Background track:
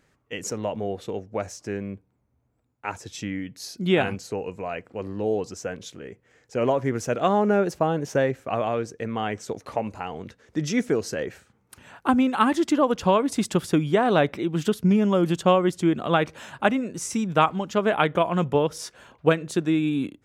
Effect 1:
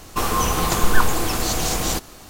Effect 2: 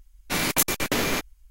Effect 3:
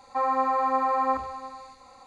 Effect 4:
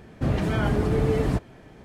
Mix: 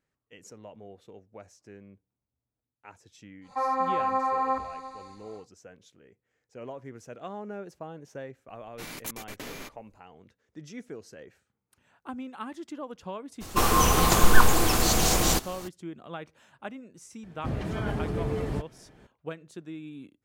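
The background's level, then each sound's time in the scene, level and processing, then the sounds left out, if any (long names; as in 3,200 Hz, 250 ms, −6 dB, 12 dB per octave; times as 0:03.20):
background track −18 dB
0:03.41: mix in 3 −2.5 dB, fades 0.10 s
0:08.48: mix in 2 −16 dB
0:13.40: mix in 1 −0.5 dB, fades 0.02 s
0:17.23: mix in 4 −7.5 dB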